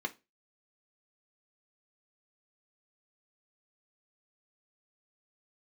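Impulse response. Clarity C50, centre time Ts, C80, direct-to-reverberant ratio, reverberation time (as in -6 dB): 20.0 dB, 6 ms, 28.5 dB, 3.0 dB, 0.25 s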